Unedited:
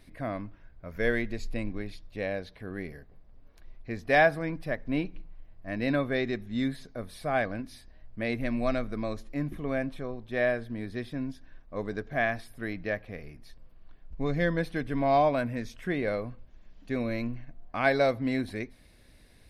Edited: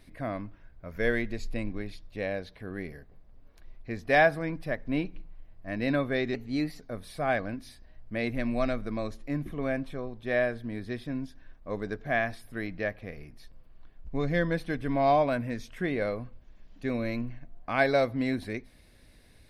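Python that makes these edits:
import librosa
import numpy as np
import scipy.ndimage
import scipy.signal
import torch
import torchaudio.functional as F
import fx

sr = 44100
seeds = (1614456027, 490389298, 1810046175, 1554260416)

y = fx.edit(x, sr, fx.speed_span(start_s=6.34, length_s=0.52, speed=1.13), tone=tone)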